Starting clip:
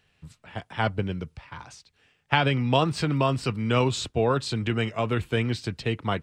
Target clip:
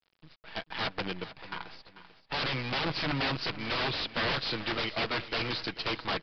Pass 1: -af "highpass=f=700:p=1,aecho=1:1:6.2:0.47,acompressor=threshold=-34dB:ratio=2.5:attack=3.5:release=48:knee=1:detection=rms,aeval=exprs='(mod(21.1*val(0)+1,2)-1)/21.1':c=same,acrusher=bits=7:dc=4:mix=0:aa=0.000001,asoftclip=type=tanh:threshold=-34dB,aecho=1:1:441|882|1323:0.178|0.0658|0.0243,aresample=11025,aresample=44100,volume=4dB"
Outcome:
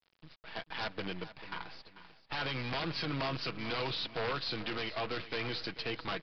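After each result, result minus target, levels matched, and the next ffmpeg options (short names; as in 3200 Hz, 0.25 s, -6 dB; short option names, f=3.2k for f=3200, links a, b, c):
soft clip: distortion +12 dB; compressor: peak gain reduction +5.5 dB
-af "highpass=f=700:p=1,aecho=1:1:6.2:0.47,acompressor=threshold=-34dB:ratio=2.5:attack=3.5:release=48:knee=1:detection=rms,aeval=exprs='(mod(21.1*val(0)+1,2)-1)/21.1':c=same,acrusher=bits=7:dc=4:mix=0:aa=0.000001,asoftclip=type=tanh:threshold=-25.5dB,aecho=1:1:441|882|1323:0.178|0.0658|0.0243,aresample=11025,aresample=44100,volume=4dB"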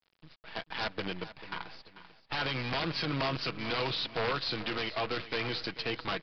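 compressor: peak gain reduction +5.5 dB
-af "highpass=f=700:p=1,aecho=1:1:6.2:0.47,acompressor=threshold=-25dB:ratio=2.5:attack=3.5:release=48:knee=1:detection=rms,aeval=exprs='(mod(21.1*val(0)+1,2)-1)/21.1':c=same,acrusher=bits=7:dc=4:mix=0:aa=0.000001,asoftclip=type=tanh:threshold=-25.5dB,aecho=1:1:441|882|1323:0.178|0.0658|0.0243,aresample=11025,aresample=44100,volume=4dB"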